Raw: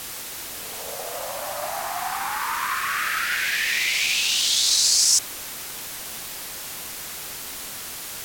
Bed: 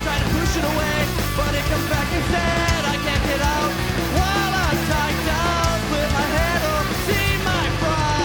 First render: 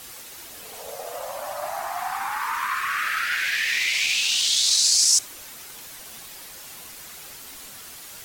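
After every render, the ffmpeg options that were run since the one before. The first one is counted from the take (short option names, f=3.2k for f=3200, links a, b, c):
-af "afftdn=nr=8:nf=-35"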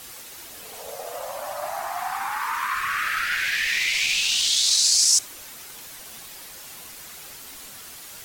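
-filter_complex "[0:a]asettb=1/sr,asplit=3[a][b][c];[a]atrim=end=2.754[d];[b]atrim=start=2.75:end=4.5,asetpts=PTS-STARTPTS,afade=t=in:d=0.004:c=qsin,afade=t=out:st=1.746:d=0.004:c=qsin,lowshelf=f=110:g=11.5[e];[c]atrim=start=4.496[f];[d][e]acrossfade=d=0.004:c1=hsin:c2=qsin[g];[g][f]acrossfade=d=0.004:c1=qsin:c2=hsin"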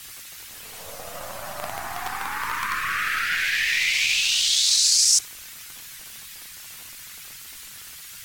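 -filter_complex "[0:a]acrossover=split=200|1200|2500[a][b][c][d];[b]acrusher=bits=5:dc=4:mix=0:aa=0.000001[e];[c]crystalizer=i=3:c=0[f];[a][e][f][d]amix=inputs=4:normalize=0"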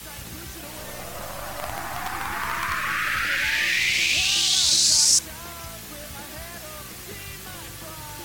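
-filter_complex "[1:a]volume=-20dB[a];[0:a][a]amix=inputs=2:normalize=0"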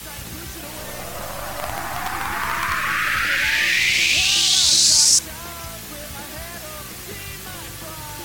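-af "volume=4dB,alimiter=limit=-3dB:level=0:latency=1"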